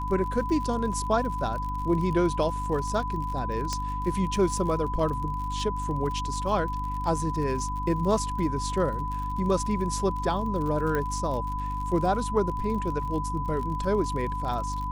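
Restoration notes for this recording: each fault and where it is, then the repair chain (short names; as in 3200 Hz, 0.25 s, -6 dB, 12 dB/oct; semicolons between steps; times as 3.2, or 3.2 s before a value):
crackle 55/s -34 dBFS
hum 50 Hz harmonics 6 -33 dBFS
tone 1000 Hz -31 dBFS
3.73 pop -15 dBFS
10.95 pop -16 dBFS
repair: de-click; de-hum 50 Hz, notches 6; notch 1000 Hz, Q 30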